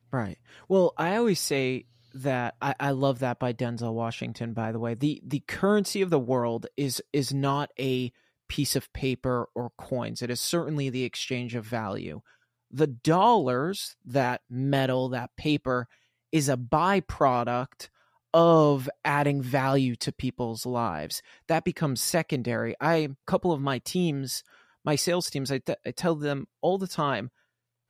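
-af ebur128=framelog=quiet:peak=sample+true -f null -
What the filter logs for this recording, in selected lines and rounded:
Integrated loudness:
  I:         -27.4 LUFS
  Threshold: -37.6 LUFS
Loudness range:
  LRA:         5.1 LU
  Threshold: -47.6 LUFS
  LRA low:   -29.9 LUFS
  LRA high:  -24.8 LUFS
Sample peak:
  Peak:       -9.3 dBFS
True peak:
  Peak:       -9.3 dBFS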